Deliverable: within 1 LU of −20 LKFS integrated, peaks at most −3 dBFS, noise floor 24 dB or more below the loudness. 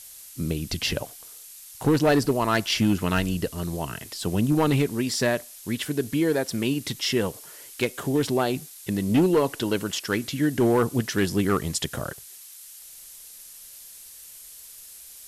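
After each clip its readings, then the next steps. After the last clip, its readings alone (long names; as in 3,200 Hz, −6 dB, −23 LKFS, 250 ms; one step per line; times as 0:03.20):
share of clipped samples 0.8%; peaks flattened at −14.5 dBFS; background noise floor −45 dBFS; target noise floor −49 dBFS; integrated loudness −25.0 LKFS; sample peak −14.5 dBFS; target loudness −20.0 LKFS
→ clipped peaks rebuilt −14.5 dBFS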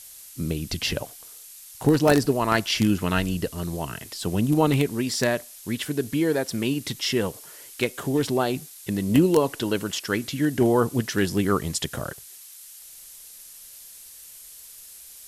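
share of clipped samples 0.0%; background noise floor −45 dBFS; target noise floor −49 dBFS
→ noise reduction from a noise print 6 dB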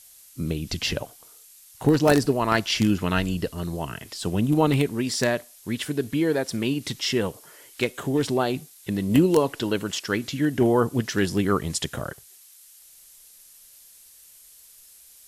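background noise floor −51 dBFS; integrated loudness −24.5 LKFS; sample peak −5.5 dBFS; target loudness −20.0 LKFS
→ level +4.5 dB
brickwall limiter −3 dBFS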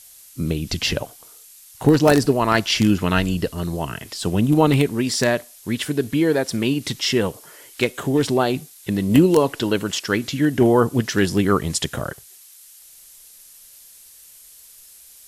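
integrated loudness −20.0 LKFS; sample peak −3.0 dBFS; background noise floor −47 dBFS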